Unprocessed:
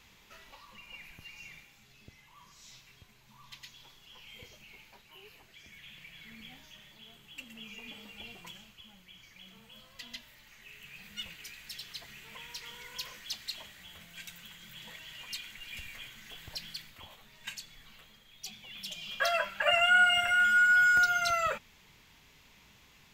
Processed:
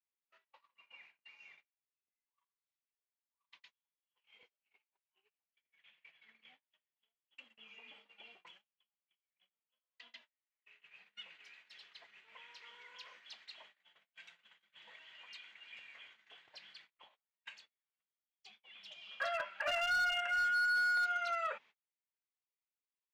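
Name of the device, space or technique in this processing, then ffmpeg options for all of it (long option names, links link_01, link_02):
walkie-talkie: -af "highpass=510,lowpass=2800,asoftclip=type=hard:threshold=-23.5dB,agate=range=-36dB:threshold=-53dB:ratio=16:detection=peak,volume=-6.5dB"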